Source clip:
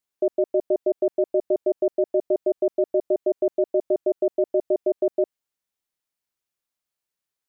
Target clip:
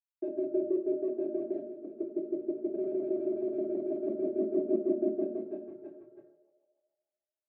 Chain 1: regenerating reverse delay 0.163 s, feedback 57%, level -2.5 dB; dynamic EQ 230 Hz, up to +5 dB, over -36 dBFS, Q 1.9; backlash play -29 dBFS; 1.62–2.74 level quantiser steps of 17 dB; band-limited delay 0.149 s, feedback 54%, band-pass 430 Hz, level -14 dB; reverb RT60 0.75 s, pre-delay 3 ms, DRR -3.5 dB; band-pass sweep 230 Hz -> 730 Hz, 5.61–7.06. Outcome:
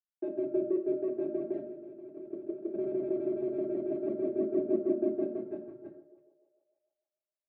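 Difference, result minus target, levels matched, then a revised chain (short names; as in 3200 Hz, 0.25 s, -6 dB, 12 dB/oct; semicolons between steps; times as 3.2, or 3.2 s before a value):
backlash: distortion +8 dB
regenerating reverse delay 0.163 s, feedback 57%, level -2.5 dB; dynamic EQ 230 Hz, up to +5 dB, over -36 dBFS, Q 1.9; backlash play -37.5 dBFS; 1.62–2.74 level quantiser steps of 17 dB; band-limited delay 0.149 s, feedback 54%, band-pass 430 Hz, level -14 dB; reverb RT60 0.75 s, pre-delay 3 ms, DRR -3.5 dB; band-pass sweep 230 Hz -> 730 Hz, 5.61–7.06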